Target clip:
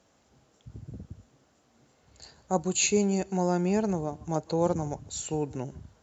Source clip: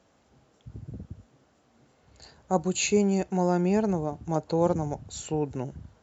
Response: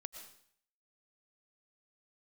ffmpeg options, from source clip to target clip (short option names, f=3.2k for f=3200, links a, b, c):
-filter_complex "[0:a]highshelf=f=5.4k:g=8.5[a];[1:a]atrim=start_sample=2205,atrim=end_sample=3969,asetrate=24696,aresample=44100[b];[a][b]afir=irnorm=-1:irlink=0"